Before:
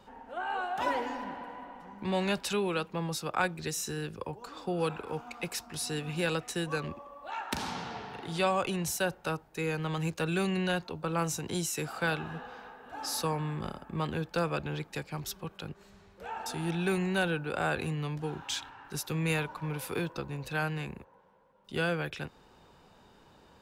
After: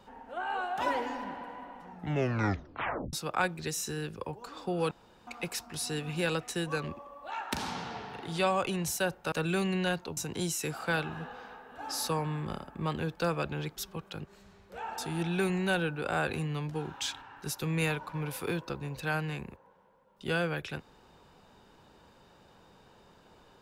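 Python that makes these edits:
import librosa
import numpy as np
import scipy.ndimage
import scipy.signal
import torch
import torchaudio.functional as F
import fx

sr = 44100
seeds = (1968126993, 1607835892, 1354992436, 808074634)

y = fx.edit(x, sr, fx.tape_stop(start_s=1.85, length_s=1.28),
    fx.room_tone_fill(start_s=4.91, length_s=0.36),
    fx.cut(start_s=9.32, length_s=0.83),
    fx.cut(start_s=11.0, length_s=0.31),
    fx.cut(start_s=14.91, length_s=0.34), tone=tone)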